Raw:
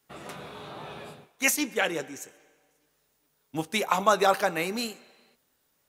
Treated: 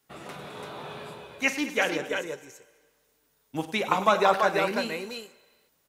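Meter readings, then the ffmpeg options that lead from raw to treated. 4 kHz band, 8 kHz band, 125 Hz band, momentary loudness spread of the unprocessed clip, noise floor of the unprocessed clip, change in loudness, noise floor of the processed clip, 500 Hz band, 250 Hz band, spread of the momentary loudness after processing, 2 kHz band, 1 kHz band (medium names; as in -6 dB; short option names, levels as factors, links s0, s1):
-0.5 dB, -8.5 dB, +1.0 dB, 19 LU, -72 dBFS, 0.0 dB, -70 dBFS, +1.5 dB, +1.0 dB, 19 LU, +1.5 dB, +1.5 dB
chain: -filter_complex "[0:a]aecho=1:1:48|100|213|336|338:0.178|0.188|0.126|0.531|0.282,acrossover=split=4600[s0][s1];[s1]acompressor=threshold=0.00398:ratio=4:attack=1:release=60[s2];[s0][s2]amix=inputs=2:normalize=0"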